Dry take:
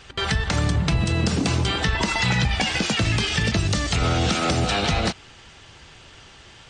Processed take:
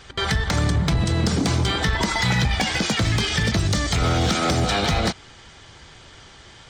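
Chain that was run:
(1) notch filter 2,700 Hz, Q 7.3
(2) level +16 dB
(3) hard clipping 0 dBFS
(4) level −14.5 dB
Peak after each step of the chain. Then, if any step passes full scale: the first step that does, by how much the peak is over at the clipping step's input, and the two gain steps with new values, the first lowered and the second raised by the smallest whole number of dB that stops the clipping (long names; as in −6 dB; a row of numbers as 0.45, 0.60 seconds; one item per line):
−9.5, +6.5, 0.0, −14.5 dBFS
step 2, 6.5 dB
step 2 +9 dB, step 4 −7.5 dB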